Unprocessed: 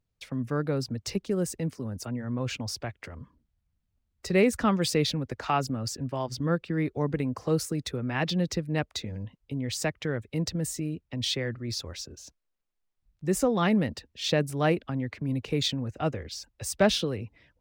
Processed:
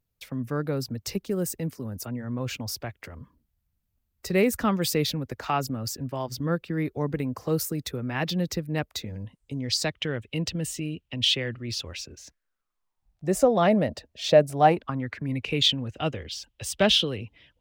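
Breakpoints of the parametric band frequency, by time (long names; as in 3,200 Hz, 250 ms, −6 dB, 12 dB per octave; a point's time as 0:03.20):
parametric band +14 dB 0.5 octaves
0:09.11 14,000 Hz
0:10.04 2,900 Hz
0:11.88 2,900 Hz
0:13.32 630 Hz
0:14.51 630 Hz
0:15.62 3,100 Hz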